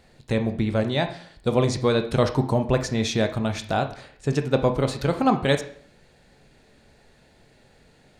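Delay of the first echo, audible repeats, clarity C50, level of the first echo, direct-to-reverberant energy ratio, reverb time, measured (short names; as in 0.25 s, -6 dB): none, none, 11.5 dB, none, 6.5 dB, 0.55 s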